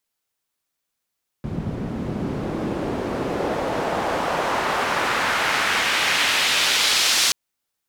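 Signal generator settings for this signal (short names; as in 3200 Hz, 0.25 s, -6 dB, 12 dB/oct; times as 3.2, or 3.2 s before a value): swept filtered noise pink, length 5.88 s bandpass, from 150 Hz, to 4800 Hz, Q 1.1, exponential, gain ramp +10 dB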